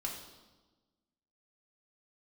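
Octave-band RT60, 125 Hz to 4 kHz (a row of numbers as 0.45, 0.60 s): 1.5, 1.6, 1.3, 1.2, 0.95, 1.1 s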